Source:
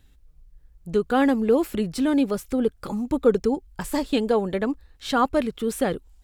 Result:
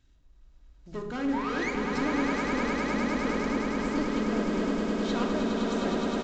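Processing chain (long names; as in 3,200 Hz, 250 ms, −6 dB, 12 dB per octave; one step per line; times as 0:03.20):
one scale factor per block 5 bits
sound drawn into the spectrogram rise, 0:01.32–0:01.71, 820–2,400 Hz −22 dBFS
bit reduction 11 bits
tube saturation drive 24 dB, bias 0.35
echo that builds up and dies away 103 ms, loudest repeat 8, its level −5.5 dB
on a send at −2 dB: convolution reverb RT60 0.65 s, pre-delay 3 ms
on the sum: downsampling to 16,000 Hz
level −8 dB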